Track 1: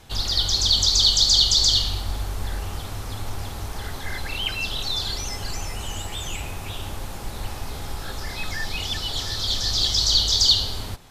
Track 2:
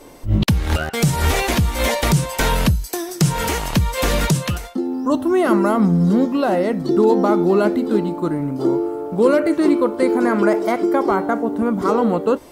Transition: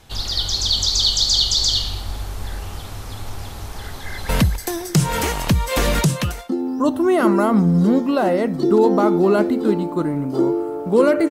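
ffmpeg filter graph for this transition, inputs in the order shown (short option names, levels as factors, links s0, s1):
-filter_complex "[0:a]apad=whole_dur=11.3,atrim=end=11.3,atrim=end=4.292[s0];[1:a]atrim=start=2.548:end=9.56[s1];[s0][s1]acrossfade=d=0.004:c1=hsin:c2=hsin,asplit=2[s2][s3];[s3]afade=t=in:st=3.92:d=0.01,afade=t=out:st=4.29:d=0.01,aecho=0:1:260|520|780|1040|1300|1560:0.630957|0.315479|0.157739|0.0788697|0.0394348|0.0197174[s4];[s2][s4]amix=inputs=2:normalize=0"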